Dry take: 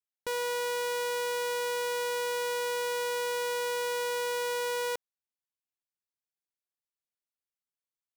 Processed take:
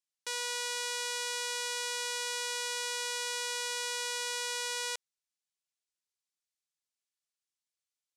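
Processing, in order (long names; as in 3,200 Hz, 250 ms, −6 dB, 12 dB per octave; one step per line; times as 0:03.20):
meter weighting curve ITU-R 468
level −6.5 dB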